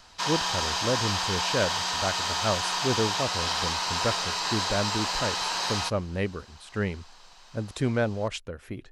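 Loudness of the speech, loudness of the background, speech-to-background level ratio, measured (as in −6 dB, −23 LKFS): −31.5 LKFS, −27.0 LKFS, −4.5 dB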